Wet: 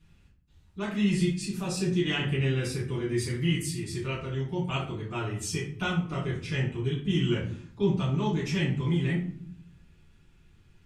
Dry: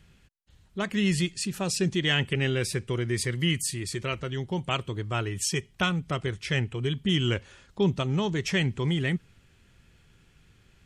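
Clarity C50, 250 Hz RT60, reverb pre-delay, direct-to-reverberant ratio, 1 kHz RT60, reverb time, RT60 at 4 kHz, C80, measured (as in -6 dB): 5.5 dB, 1.0 s, 4 ms, -7.5 dB, 0.55 s, 0.60 s, 0.35 s, 10.0 dB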